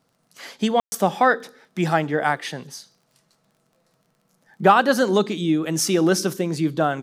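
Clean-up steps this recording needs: de-click; room tone fill 0.80–0.92 s

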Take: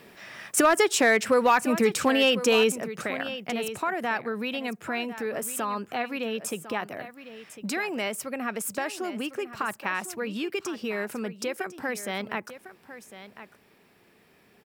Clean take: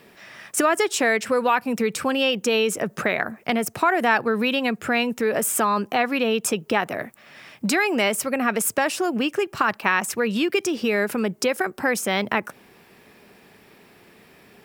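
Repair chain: clip repair -12 dBFS; inverse comb 1052 ms -13.5 dB; trim 0 dB, from 2.72 s +9 dB

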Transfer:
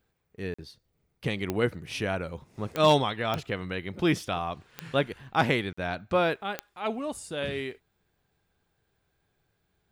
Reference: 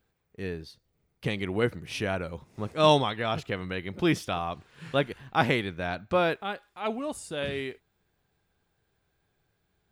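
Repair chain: clip repair -11 dBFS; de-click; interpolate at 0.54/5.73 s, 45 ms

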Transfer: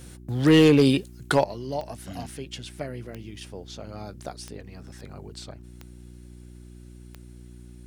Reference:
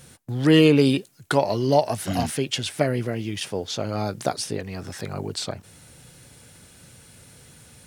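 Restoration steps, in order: clip repair -9.5 dBFS; de-click; de-hum 60.3 Hz, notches 6; trim 0 dB, from 1.44 s +12 dB

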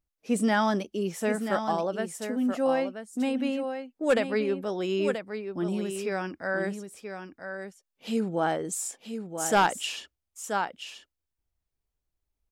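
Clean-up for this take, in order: clip repair -15 dBFS; inverse comb 981 ms -8 dB

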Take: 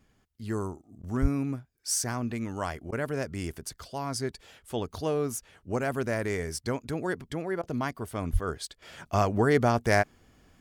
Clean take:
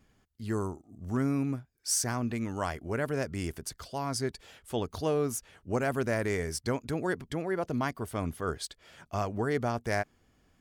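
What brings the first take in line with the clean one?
1.21–1.33 s: high-pass 140 Hz 24 dB/octave; 8.32–8.44 s: high-pass 140 Hz 24 dB/octave; interpolate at 1.02/2.91/7.62 s, 12 ms; trim 0 dB, from 8.82 s -7 dB

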